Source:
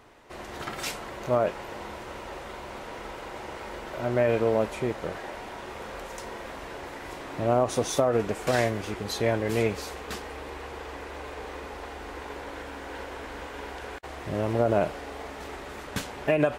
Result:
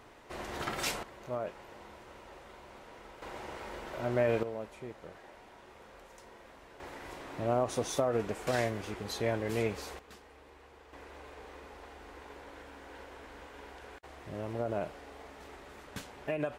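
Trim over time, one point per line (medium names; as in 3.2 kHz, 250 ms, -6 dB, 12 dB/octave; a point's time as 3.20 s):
-1 dB
from 1.03 s -12.5 dB
from 3.22 s -5 dB
from 4.43 s -15.5 dB
from 6.80 s -6.5 dB
from 9.99 s -17.5 dB
from 10.93 s -11 dB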